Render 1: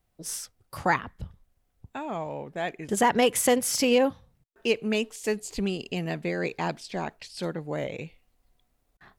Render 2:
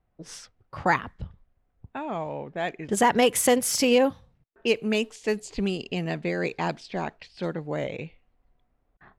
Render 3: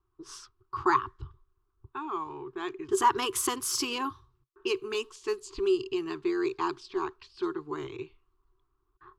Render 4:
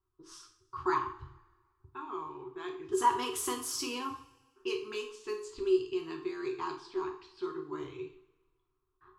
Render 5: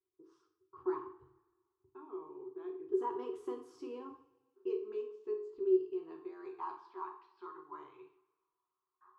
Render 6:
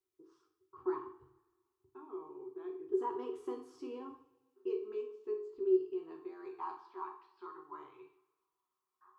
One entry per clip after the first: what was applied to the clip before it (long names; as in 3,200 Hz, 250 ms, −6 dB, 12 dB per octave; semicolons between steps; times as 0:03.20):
low-pass that shuts in the quiet parts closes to 1,800 Hz, open at −23 dBFS; level +1.5 dB
drawn EQ curve 130 Hz 0 dB, 190 Hz −27 dB, 380 Hz +14 dB, 550 Hz −30 dB, 1,100 Hz +13 dB, 2,000 Hz −9 dB, 2,800 Hz −1 dB, 4,800 Hz +2 dB, 9,100 Hz −1 dB; level −4.5 dB
coupled-rooms reverb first 0.46 s, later 1.5 s, from −19 dB, DRR 1.5 dB; level −8 dB
band-pass filter sweep 430 Hz → 960 Hz, 0:05.77–0:06.89
tuned comb filter 260 Hz, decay 0.45 s, harmonics odd, mix 70%; level +10 dB